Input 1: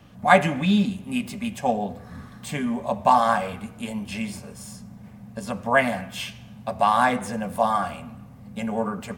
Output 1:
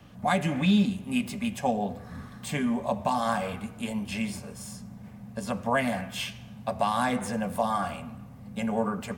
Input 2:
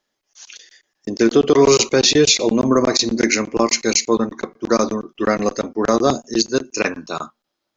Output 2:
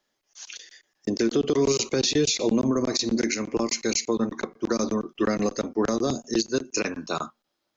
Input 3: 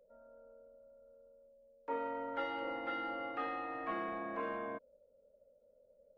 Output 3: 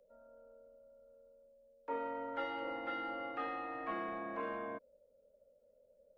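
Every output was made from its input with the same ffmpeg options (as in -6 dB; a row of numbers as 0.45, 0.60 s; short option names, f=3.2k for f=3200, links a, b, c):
-filter_complex "[0:a]acrossover=split=400|3000[a][b][c];[b]acompressor=threshold=-23dB:ratio=6[d];[a][d][c]amix=inputs=3:normalize=0,alimiter=limit=-12.5dB:level=0:latency=1:release=216,volume=-1dB"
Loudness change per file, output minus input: -5.0, -8.5, -1.0 LU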